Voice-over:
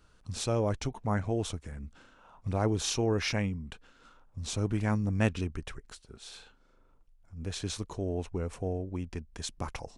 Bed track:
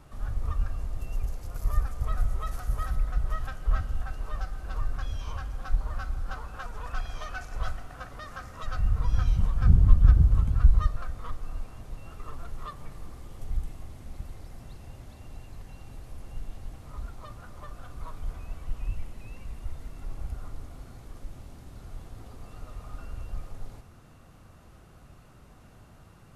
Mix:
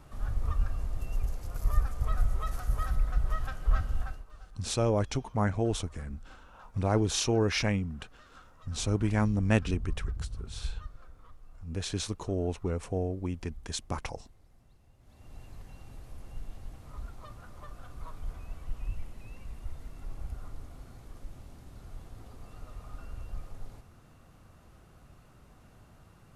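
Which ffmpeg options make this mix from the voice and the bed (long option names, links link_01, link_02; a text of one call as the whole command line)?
ffmpeg -i stem1.wav -i stem2.wav -filter_complex "[0:a]adelay=4300,volume=2dB[link_01];[1:a]volume=13.5dB,afade=type=out:start_time=4.03:duration=0.22:silence=0.141254,afade=type=in:start_time=14.99:duration=0.44:silence=0.199526[link_02];[link_01][link_02]amix=inputs=2:normalize=0" out.wav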